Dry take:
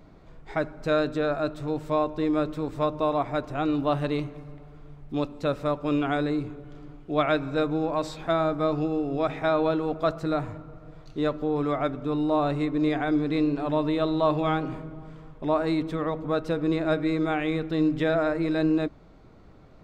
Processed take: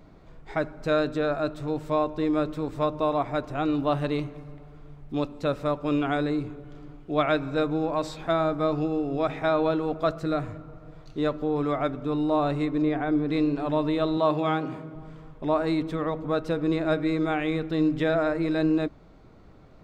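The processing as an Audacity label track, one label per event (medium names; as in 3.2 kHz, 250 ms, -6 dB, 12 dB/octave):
10.070000	10.630000	peaking EQ 890 Hz -10 dB 0.21 oct
12.820000	13.290000	low-pass 1.7 kHz 6 dB/octave
14.170000	14.950000	high-pass 130 Hz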